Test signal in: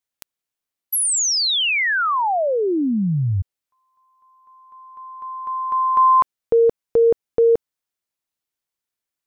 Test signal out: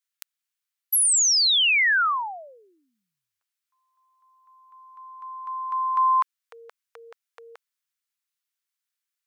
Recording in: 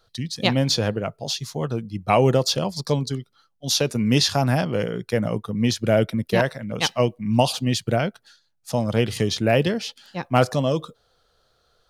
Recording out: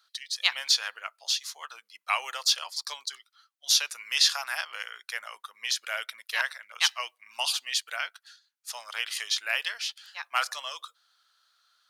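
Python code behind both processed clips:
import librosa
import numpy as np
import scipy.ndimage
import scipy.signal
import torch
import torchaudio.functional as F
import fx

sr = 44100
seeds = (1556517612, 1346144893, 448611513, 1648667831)

y = scipy.signal.sosfilt(scipy.signal.butter(4, 1200.0, 'highpass', fs=sr, output='sos'), x)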